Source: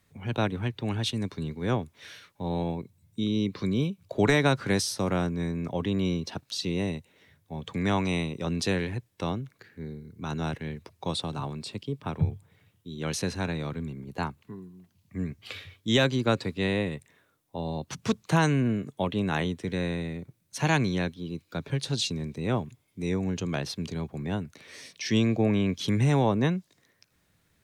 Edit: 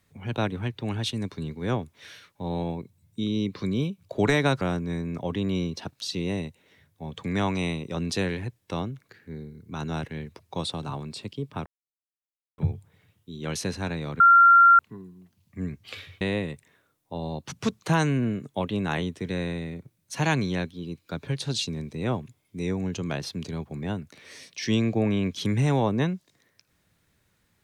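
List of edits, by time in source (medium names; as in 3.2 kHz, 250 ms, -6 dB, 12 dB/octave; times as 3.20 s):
4.61–5.11 s: delete
12.16 s: insert silence 0.92 s
13.78–14.37 s: bleep 1.38 kHz -11 dBFS
15.79–16.64 s: delete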